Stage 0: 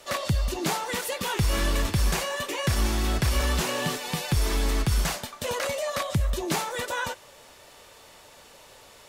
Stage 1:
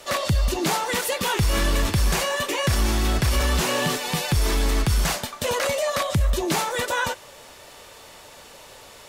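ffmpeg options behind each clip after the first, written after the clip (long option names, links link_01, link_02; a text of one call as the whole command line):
ffmpeg -i in.wav -af "alimiter=limit=-19dB:level=0:latency=1:release=14,acontrast=82,volume=-1.5dB" out.wav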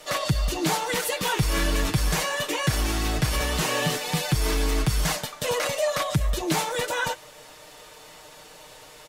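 ffmpeg -i in.wav -af "aecho=1:1:6.5:0.65,volume=-3dB" out.wav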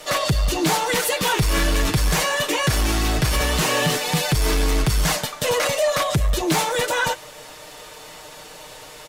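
ffmpeg -i in.wav -af "asoftclip=type=tanh:threshold=-19dB,volume=6.5dB" out.wav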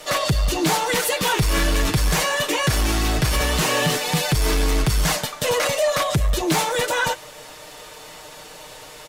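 ffmpeg -i in.wav -af anull out.wav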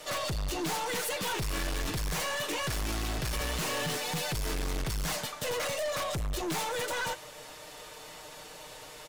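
ffmpeg -i in.wav -af "aeval=exprs='(tanh(15.8*val(0)+0.2)-tanh(0.2))/15.8':channel_layout=same,volume=-6dB" out.wav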